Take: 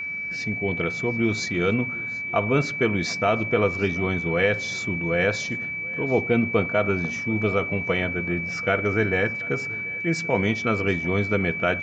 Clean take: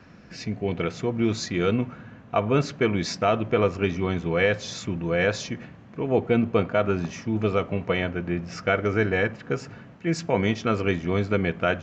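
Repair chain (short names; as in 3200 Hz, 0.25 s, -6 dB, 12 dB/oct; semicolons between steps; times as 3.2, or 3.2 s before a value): notch 2300 Hz, Q 30; inverse comb 0.734 s -22 dB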